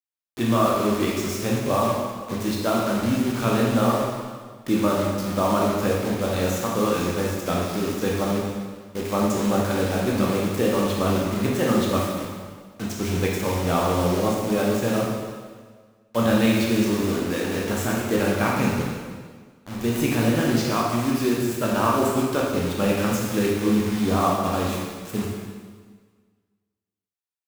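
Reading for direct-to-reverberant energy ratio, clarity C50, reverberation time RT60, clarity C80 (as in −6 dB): −3.5 dB, 0.0 dB, 1.6 s, 2.5 dB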